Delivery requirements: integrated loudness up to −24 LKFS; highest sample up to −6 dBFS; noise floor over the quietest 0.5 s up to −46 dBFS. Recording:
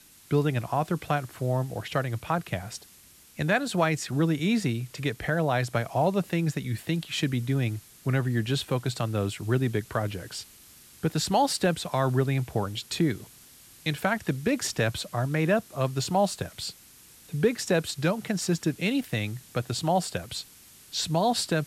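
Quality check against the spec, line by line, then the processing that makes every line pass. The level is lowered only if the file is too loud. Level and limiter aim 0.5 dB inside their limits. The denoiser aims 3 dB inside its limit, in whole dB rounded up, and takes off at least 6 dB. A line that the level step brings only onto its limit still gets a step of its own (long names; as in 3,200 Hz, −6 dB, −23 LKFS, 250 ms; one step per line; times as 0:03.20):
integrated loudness −28.0 LKFS: in spec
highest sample −10.5 dBFS: in spec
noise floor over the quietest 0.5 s −54 dBFS: in spec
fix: no processing needed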